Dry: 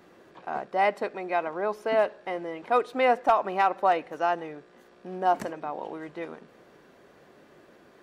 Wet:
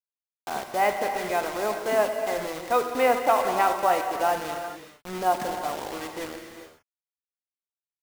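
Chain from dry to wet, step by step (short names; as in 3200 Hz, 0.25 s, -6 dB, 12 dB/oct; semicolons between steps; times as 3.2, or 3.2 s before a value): HPF 110 Hz 12 dB/oct; bit-crush 6-bit; non-linear reverb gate 0.45 s flat, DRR 4 dB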